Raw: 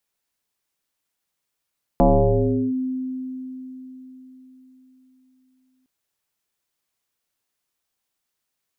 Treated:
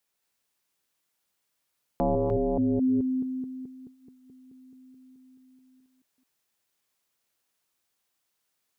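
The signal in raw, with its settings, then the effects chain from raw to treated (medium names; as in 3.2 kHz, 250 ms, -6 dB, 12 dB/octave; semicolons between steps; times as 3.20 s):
FM tone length 3.86 s, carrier 258 Hz, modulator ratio 0.57, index 3.8, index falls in 0.73 s linear, decay 4.33 s, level -10.5 dB
chunks repeated in reverse 215 ms, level -3 dB; bass shelf 100 Hz -6 dB; peak limiter -19 dBFS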